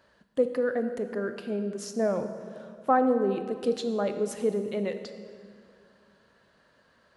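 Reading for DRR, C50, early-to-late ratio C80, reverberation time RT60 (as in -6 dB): 8.0 dB, 9.0 dB, 10.5 dB, 2.2 s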